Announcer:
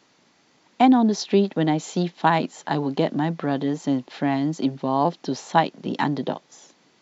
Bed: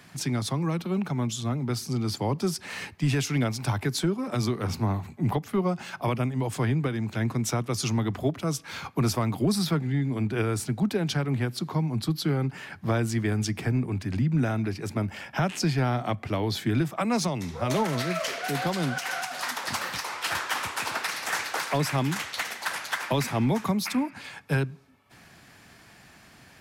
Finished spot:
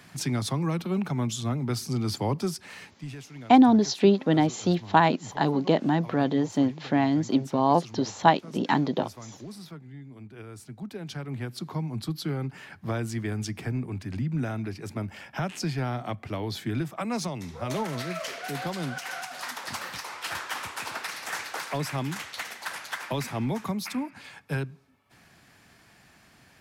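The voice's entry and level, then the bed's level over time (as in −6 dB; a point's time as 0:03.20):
2.70 s, −0.5 dB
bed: 0:02.36 0 dB
0:03.27 −17.5 dB
0:10.37 −17.5 dB
0:11.62 −4.5 dB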